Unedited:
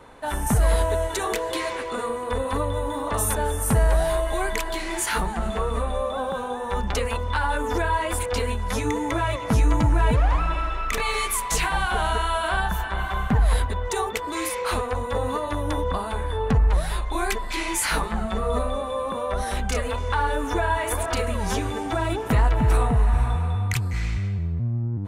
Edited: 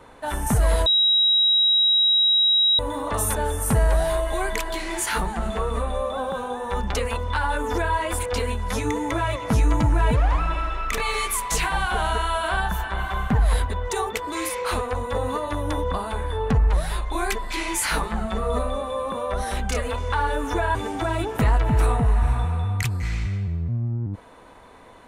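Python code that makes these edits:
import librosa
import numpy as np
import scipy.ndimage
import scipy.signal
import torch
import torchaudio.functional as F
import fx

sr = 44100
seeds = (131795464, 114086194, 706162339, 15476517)

y = fx.edit(x, sr, fx.bleep(start_s=0.86, length_s=1.93, hz=3840.0, db=-15.0),
    fx.cut(start_s=20.75, length_s=0.91), tone=tone)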